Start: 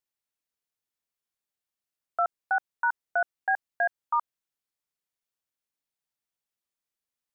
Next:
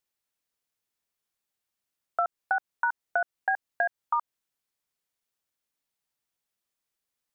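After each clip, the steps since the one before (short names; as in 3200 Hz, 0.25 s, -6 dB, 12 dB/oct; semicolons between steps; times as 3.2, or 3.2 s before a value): compressor, threshold -27 dBFS, peak gain reduction 6 dB; gain +4 dB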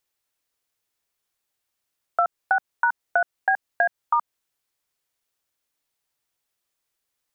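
bell 200 Hz -6.5 dB 0.53 oct; gain +5.5 dB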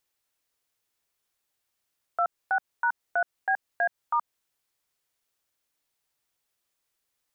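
limiter -17.5 dBFS, peak gain reduction 9 dB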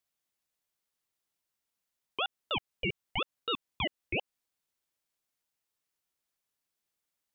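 ring modulator with a swept carrier 1700 Hz, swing 25%, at 4 Hz; gain -3.5 dB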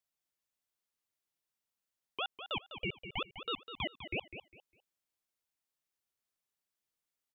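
feedback echo 0.202 s, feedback 24%, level -10.5 dB; gain -5 dB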